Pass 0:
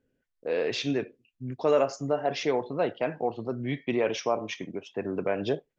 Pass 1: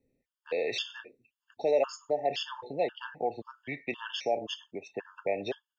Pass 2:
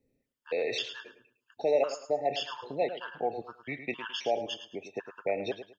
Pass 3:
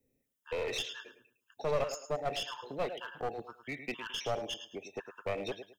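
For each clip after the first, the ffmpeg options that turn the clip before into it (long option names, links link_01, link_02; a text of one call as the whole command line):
ffmpeg -i in.wav -filter_complex "[0:a]equalizer=frequency=3000:width=2.6:gain=4.5,acrossover=split=430|2200[link_01][link_02][link_03];[link_01]acompressor=threshold=-41dB:ratio=6[link_04];[link_04][link_02][link_03]amix=inputs=3:normalize=0,afftfilt=real='re*gt(sin(2*PI*1.9*pts/sr)*(1-2*mod(floor(b*sr/1024/900),2)),0)':imag='im*gt(sin(2*PI*1.9*pts/sr)*(1-2*mod(floor(b*sr/1024/900),2)),0)':win_size=1024:overlap=0.75" out.wav
ffmpeg -i in.wav -af "aecho=1:1:107|214|321:0.282|0.0705|0.0176" out.wav
ffmpeg -i in.wav -filter_complex "[0:a]bandreject=frequency=4500:width=5.2,acrossover=split=330|1400[link_01][link_02][link_03];[link_03]crystalizer=i=1.5:c=0[link_04];[link_01][link_02][link_04]amix=inputs=3:normalize=0,aeval=exprs='clip(val(0),-1,0.0251)':channel_layout=same,volume=-3dB" out.wav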